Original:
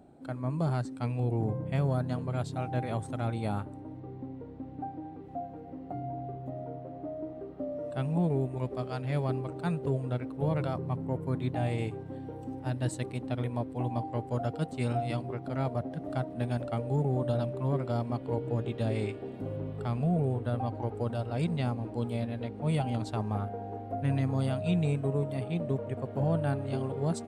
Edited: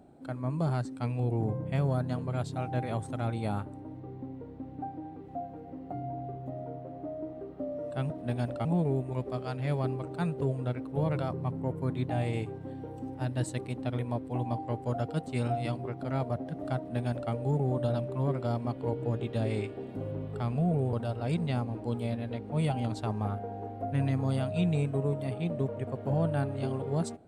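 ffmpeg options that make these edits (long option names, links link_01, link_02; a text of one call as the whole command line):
ffmpeg -i in.wav -filter_complex "[0:a]asplit=4[link_01][link_02][link_03][link_04];[link_01]atrim=end=8.102[link_05];[link_02]atrim=start=16.218:end=16.772[link_06];[link_03]atrim=start=8.098:end=20.382[link_07];[link_04]atrim=start=21.028[link_08];[link_05][link_06]acrossfade=duration=0.004:curve1=hsin:curve2=hsin[link_09];[link_09][link_07]acrossfade=duration=0.004:curve1=hsin:curve2=hsin[link_10];[link_10][link_08]acrossfade=duration=0.004:curve1=hsin:curve2=hsin" out.wav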